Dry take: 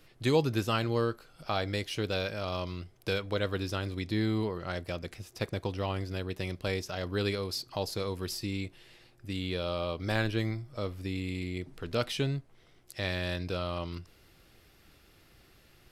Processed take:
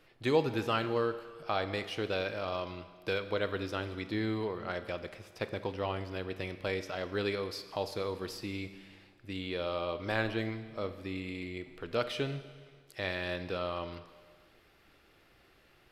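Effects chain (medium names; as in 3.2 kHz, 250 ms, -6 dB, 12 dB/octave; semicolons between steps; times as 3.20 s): tone controls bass -8 dB, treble -10 dB; Schroeder reverb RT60 1.6 s, combs from 28 ms, DRR 11 dB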